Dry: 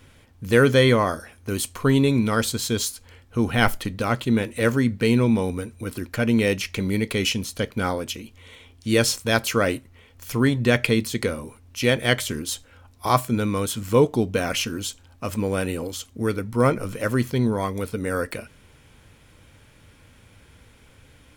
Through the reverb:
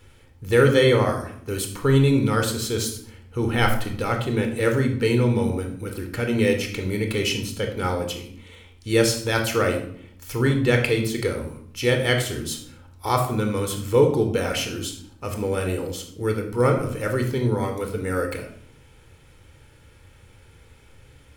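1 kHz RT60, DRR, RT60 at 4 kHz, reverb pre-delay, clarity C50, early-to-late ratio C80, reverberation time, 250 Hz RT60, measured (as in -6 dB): 0.60 s, 4.5 dB, 0.45 s, 24 ms, 8.0 dB, 11.5 dB, 0.60 s, 0.95 s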